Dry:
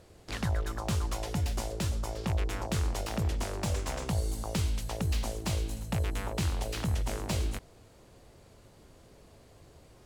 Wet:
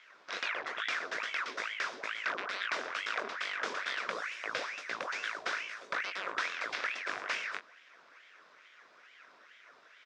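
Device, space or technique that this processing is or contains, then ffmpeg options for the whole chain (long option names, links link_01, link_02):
voice changer toy: -filter_complex "[0:a]highpass=frequency=520:poles=1,equalizer=frequency=7700:width=1.5:gain=-3.5,asplit=2[link_01][link_02];[link_02]adelay=21,volume=-7dB[link_03];[link_01][link_03]amix=inputs=2:normalize=0,aeval=exprs='val(0)*sin(2*PI*1500*n/s+1500*0.8/2.3*sin(2*PI*2.3*n/s))':channel_layout=same,highpass=540,equalizer=frequency=830:width_type=q:width=4:gain=-10,equalizer=frequency=1500:width_type=q:width=4:gain=4,equalizer=frequency=3000:width_type=q:width=4:gain=-6,equalizer=frequency=4300:width_type=q:width=4:gain=-7,lowpass=frequency=4800:width=0.5412,lowpass=frequency=4800:width=1.3066,volume=8dB"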